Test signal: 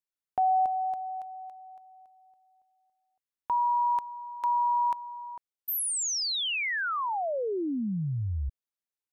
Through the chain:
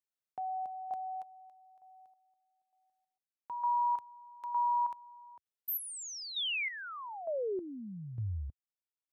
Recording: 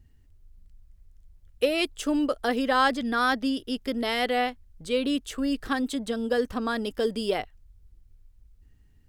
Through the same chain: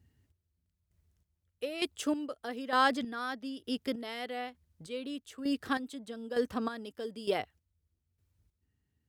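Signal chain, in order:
high-pass filter 76 Hz 24 dB per octave
square-wave tremolo 1.1 Hz, depth 65%, duty 35%
level −4 dB

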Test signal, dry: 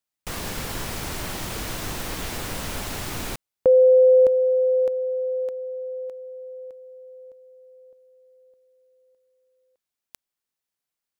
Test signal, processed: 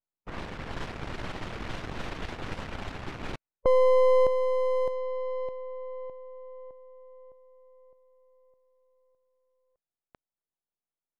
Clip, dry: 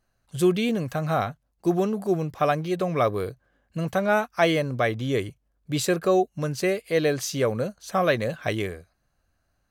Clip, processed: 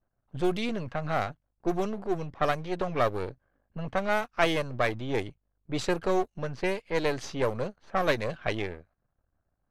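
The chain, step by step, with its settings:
gain on one half-wave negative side −12 dB
harmonic and percussive parts rebalanced harmonic −3 dB
low-pass that shuts in the quiet parts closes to 1,100 Hz, open at −21 dBFS

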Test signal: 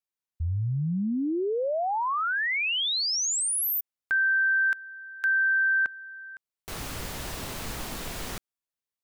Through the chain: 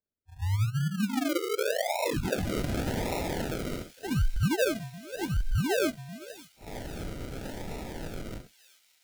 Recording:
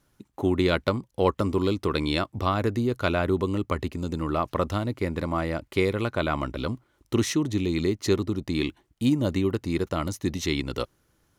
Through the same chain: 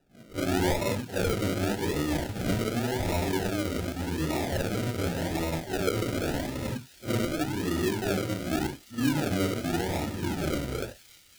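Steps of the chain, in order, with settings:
random phases in long frames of 200 ms
high-shelf EQ 8,100 Hz −6.5 dB
in parallel at −3 dB: brickwall limiter −21 dBFS
on the sum: sample-and-hold swept by an LFO 40×, swing 60% 0.87 Hz
Butterworth band-reject 1,100 Hz, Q 4.9
on a send: delay with a high-pass on its return 576 ms, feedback 77%, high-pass 3,200 Hz, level −15.5 dB
on the sum: level −6 dB

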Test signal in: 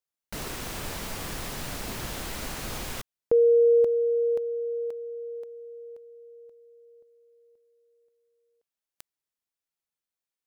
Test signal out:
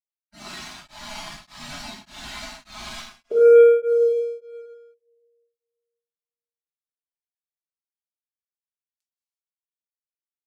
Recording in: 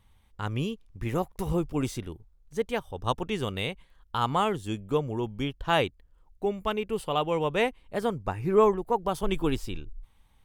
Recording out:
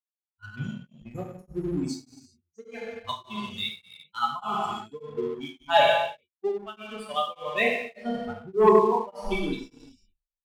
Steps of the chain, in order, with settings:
spectral dynamics exaggerated over time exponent 3
low-pass filter 6,000 Hz 12 dB per octave
low-shelf EQ 150 Hz −11 dB
comb filter 4.8 ms, depth 56%
reverb whose tail is shaped and stops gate 420 ms falling, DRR −4.5 dB
dynamic equaliser 3,900 Hz, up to +6 dB, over −56 dBFS, Q 3.9
leveller curve on the samples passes 1
tremolo along a rectified sine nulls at 1.7 Hz
level +1.5 dB

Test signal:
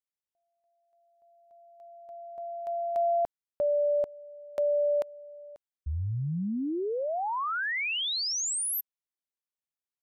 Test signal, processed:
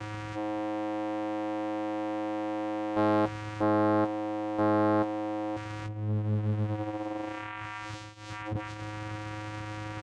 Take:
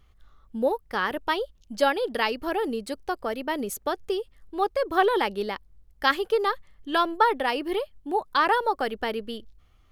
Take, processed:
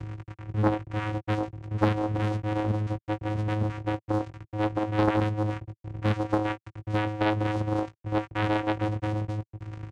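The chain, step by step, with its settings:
linear delta modulator 16 kbit/s, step −27.5 dBFS
double-tracking delay 19 ms −8 dB
channel vocoder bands 4, square 106 Hz
highs frequency-modulated by the lows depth 0.86 ms

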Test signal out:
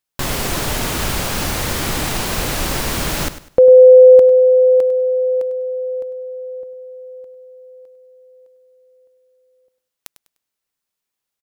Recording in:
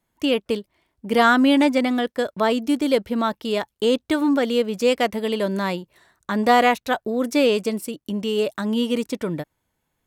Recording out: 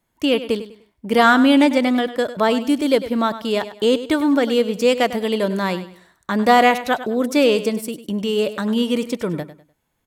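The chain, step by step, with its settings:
repeating echo 100 ms, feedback 29%, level −13.5 dB
level +2.5 dB

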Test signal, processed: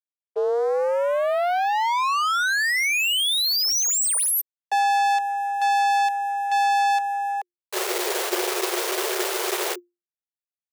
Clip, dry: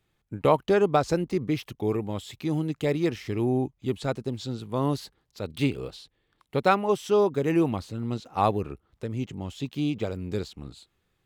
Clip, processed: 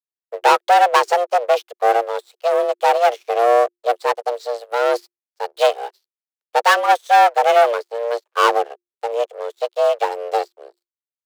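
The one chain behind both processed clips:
leveller curve on the samples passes 5
frequency shifter +350 Hz
expander for the loud parts 2.5 to 1, over −33 dBFS

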